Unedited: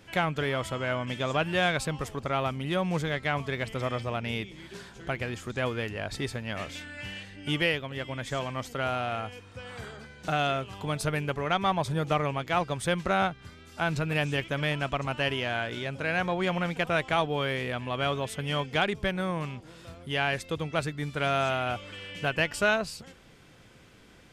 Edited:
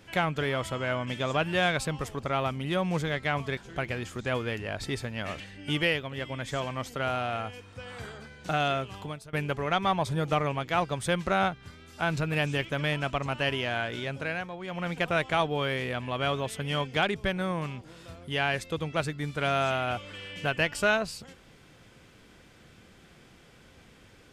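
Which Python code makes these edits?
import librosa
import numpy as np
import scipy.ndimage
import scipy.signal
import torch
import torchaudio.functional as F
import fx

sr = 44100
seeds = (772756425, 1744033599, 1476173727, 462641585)

y = fx.edit(x, sr, fx.cut(start_s=3.57, length_s=1.31),
    fx.cut(start_s=6.71, length_s=0.48),
    fx.fade_out_to(start_s=10.78, length_s=0.34, curve='qua', floor_db=-21.0),
    fx.fade_down_up(start_s=15.97, length_s=0.78, db=-10.5, fade_s=0.29), tone=tone)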